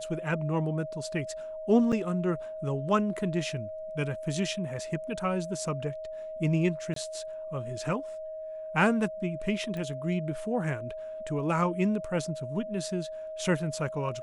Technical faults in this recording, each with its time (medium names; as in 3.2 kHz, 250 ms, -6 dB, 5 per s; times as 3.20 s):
whine 630 Hz -36 dBFS
1.92–1.93 s: dropout 5.8 ms
6.94–6.96 s: dropout 23 ms
9.77 s: pop -25 dBFS